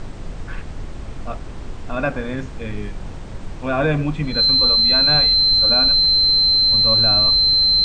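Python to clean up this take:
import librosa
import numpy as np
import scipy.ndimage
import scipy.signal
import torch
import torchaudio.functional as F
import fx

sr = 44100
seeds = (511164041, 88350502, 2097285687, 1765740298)

y = fx.notch(x, sr, hz=4100.0, q=30.0)
y = fx.noise_reduce(y, sr, print_start_s=3.1, print_end_s=3.6, reduce_db=30.0)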